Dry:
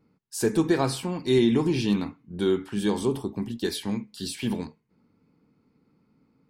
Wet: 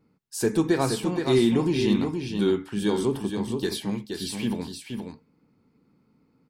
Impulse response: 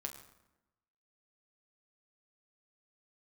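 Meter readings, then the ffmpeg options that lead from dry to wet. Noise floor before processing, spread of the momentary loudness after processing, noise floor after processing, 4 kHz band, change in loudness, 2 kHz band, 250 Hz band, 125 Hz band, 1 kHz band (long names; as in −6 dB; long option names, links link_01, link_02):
−68 dBFS, 13 LU, −67 dBFS, +1.0 dB, +1.0 dB, +1.0 dB, +1.0 dB, +1.0 dB, +1.0 dB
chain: -af "aecho=1:1:472:0.501"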